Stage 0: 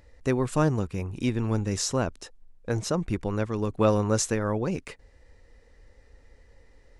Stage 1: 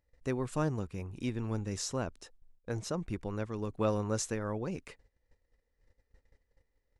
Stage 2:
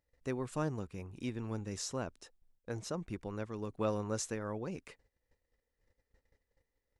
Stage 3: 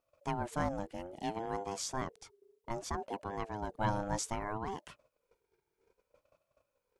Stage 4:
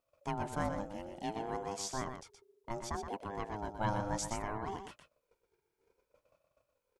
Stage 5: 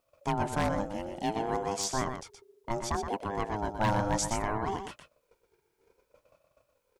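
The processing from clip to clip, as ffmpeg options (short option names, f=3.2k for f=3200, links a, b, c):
-af "agate=range=-15dB:threshold=-50dB:ratio=16:detection=peak,volume=-8.5dB"
-af "lowshelf=f=78:g=-7,volume=-3dB"
-af "aeval=exprs='val(0)*sin(2*PI*500*n/s+500*0.2/0.62*sin(2*PI*0.62*n/s))':c=same,volume=4dB"
-af "aecho=1:1:121:0.422,volume=-1.5dB"
-af "aeval=exprs='0.0501*(abs(mod(val(0)/0.0501+3,4)-2)-1)':c=same,volume=7.5dB"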